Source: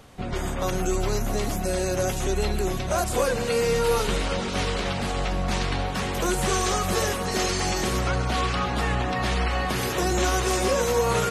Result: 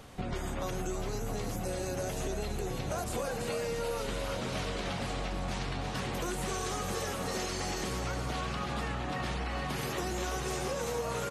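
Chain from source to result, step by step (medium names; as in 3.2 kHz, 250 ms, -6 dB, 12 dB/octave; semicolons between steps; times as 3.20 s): frequency-shifting echo 331 ms, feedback 40%, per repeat +82 Hz, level -7 dB; compression 6:1, threshold -31 dBFS, peak gain reduction 13.5 dB; trim -1 dB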